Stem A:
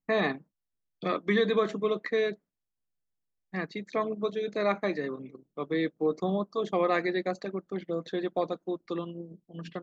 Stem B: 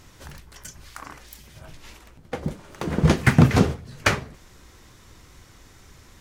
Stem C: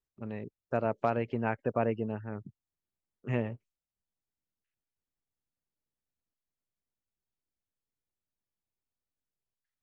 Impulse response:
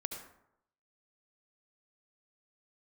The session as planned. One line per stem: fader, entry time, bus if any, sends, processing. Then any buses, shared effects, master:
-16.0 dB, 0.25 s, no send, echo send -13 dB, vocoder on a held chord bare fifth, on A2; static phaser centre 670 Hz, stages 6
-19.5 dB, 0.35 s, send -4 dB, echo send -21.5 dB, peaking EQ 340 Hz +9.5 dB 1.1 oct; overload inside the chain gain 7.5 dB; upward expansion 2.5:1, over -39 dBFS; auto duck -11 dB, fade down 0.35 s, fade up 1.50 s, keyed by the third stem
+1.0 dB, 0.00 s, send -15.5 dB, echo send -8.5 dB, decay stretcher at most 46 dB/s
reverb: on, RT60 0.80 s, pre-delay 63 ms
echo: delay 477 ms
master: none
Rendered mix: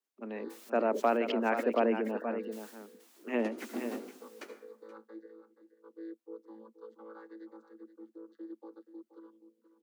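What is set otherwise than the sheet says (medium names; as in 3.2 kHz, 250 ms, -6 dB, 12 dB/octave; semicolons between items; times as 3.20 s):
stem C: send off; master: extra steep high-pass 220 Hz 72 dB/octave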